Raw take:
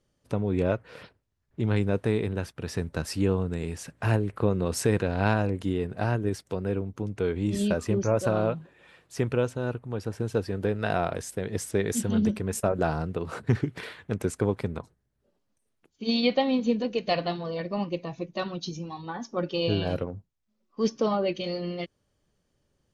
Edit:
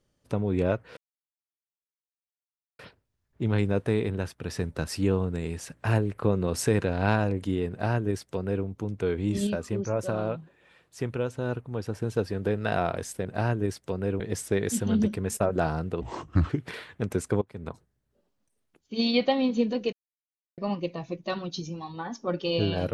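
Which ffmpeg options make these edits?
-filter_complex "[0:a]asplit=11[a][b][c][d][e][f][g][h][i][j][k];[a]atrim=end=0.97,asetpts=PTS-STARTPTS,afade=t=out:st=0.966:d=0.004:c=hsin,apad=pad_dur=1.82[l];[b]atrim=start=0.97:end=7.652,asetpts=PTS-STARTPTS,afade=t=in:d=0.004:c=hsin[m];[c]atrim=start=7.648:end=9.532,asetpts=PTS-STARTPTS,volume=-4dB[n];[d]atrim=start=9.528:end=11.432[o];[e]atrim=start=5.878:end=6.832[p];[f]atrim=start=11.428:end=13.244[q];[g]atrim=start=13.24:end=13.59,asetpts=PTS-STARTPTS,asetrate=31752,aresample=44100[r];[h]atrim=start=13.586:end=14.51,asetpts=PTS-STARTPTS,afade=t=out:st=0.92:d=0.004:c=hsin:silence=0.0749894[s];[i]atrim=start=14.51:end=17.02,asetpts=PTS-STARTPTS,afade=t=in:d=0.28:c=qua:silence=0.0749894,afade=t=out:st=2.506:d=0.004:c=hsin[t];[j]atrim=start=17.02:end=17.67,asetpts=PTS-STARTPTS,volume=0[u];[k]atrim=start=17.67,asetpts=PTS-STARTPTS,afade=t=in:d=0.004:c=hsin[v];[l][m]concat=n=2:v=0:a=1[w];[w][n]acrossfade=d=0.004:c1=hsin:c2=hsin[x];[x][o]acrossfade=d=0.004:c1=hsin:c2=hsin[y];[y][p]acrossfade=d=0.004:c1=hsin:c2=hsin[z];[z][q]acrossfade=d=0.004:c1=hsin:c2=hsin[aa];[aa][r]acrossfade=d=0.004:c1=hsin:c2=hsin[ab];[s][t][u][v]concat=n=4:v=0:a=1[ac];[ab][ac]acrossfade=d=0.004:c1=hsin:c2=hsin"

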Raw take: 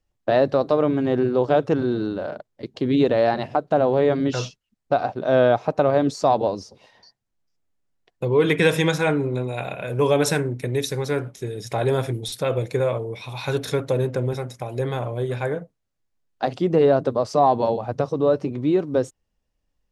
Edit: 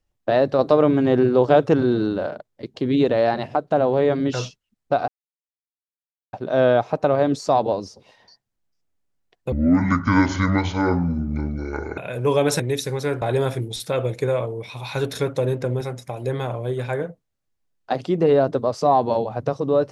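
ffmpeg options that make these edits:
-filter_complex "[0:a]asplit=8[a][b][c][d][e][f][g][h];[a]atrim=end=0.592[i];[b]atrim=start=0.588:end=2.282,asetpts=PTS-STARTPTS,volume=3.5dB[j];[c]atrim=start=2.278:end=5.08,asetpts=PTS-STARTPTS,afade=t=out:st=2.798:d=0.004:c=hsin,apad=pad_dur=1.25[k];[d]atrim=start=5.08:end=8.274,asetpts=PTS-STARTPTS,afade=t=in:d=0.004:c=hsin[l];[e]atrim=start=8.27:end=9.72,asetpts=PTS-STARTPTS,asetrate=26019,aresample=44100,atrim=end_sample=108381,asetpts=PTS-STARTPTS[m];[f]atrim=start=9.716:end=10.342[n];[g]atrim=start=10.648:end=11.272[o];[h]atrim=start=11.738[p];[i][j]acrossfade=d=0.004:c1=hsin:c2=hsin[q];[k][l]concat=n=2:v=0:a=1[r];[q][r]acrossfade=d=0.004:c1=hsin:c2=hsin[s];[s][m]acrossfade=d=0.004:c1=hsin:c2=hsin[t];[t][n]acrossfade=d=0.004:c1=hsin:c2=hsin[u];[u][o]acrossfade=d=0.004:c1=hsin:c2=hsin[v];[v][p]acrossfade=d=0.004:c1=hsin:c2=hsin"

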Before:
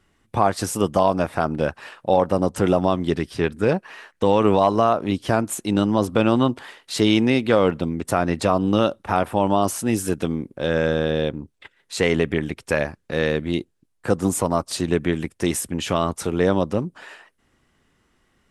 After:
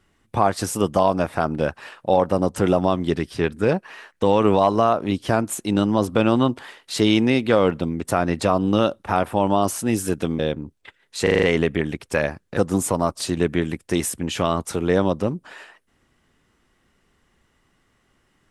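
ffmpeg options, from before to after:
-filter_complex "[0:a]asplit=8[a][b][c][d][e][f][g][h];[a]atrim=end=10.392[i];[b]atrim=start=11.158:end=12.042[j];[c]atrim=start=11.998:end=12.042[k];[d]atrim=start=11.998:end=12.042[l];[e]atrim=start=11.998:end=12.042[m];[f]atrim=start=11.998:end=12.042[n];[g]atrim=start=11.998:end=13.142[o];[h]atrim=start=14.078[p];[i][j]acrossfade=d=0.004:c1=hsin:c2=hsin[q];[q][k]acrossfade=d=0.004:c1=hsin:c2=hsin[r];[r][l]acrossfade=d=0.004:c1=hsin:c2=hsin[s];[s][m]acrossfade=d=0.004:c1=hsin:c2=hsin[t];[t][n]acrossfade=d=0.004:c1=hsin:c2=hsin[u];[u][o]acrossfade=d=0.004:c1=hsin:c2=hsin[v];[v][p]acrossfade=d=0.004:c1=hsin:c2=hsin"

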